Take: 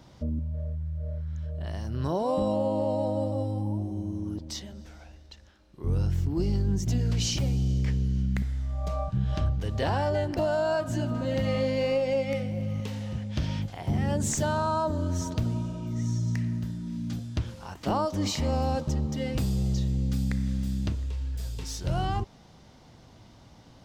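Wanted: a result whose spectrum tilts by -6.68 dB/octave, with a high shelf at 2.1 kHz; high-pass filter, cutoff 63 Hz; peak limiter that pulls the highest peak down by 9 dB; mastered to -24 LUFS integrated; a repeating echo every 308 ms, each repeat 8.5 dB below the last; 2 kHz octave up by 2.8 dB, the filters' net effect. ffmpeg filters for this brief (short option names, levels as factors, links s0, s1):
-af "highpass=63,equalizer=f=2000:t=o:g=5.5,highshelf=f=2100:g=-3.5,alimiter=level_in=1.12:limit=0.0631:level=0:latency=1,volume=0.891,aecho=1:1:308|616|924|1232:0.376|0.143|0.0543|0.0206,volume=2.82"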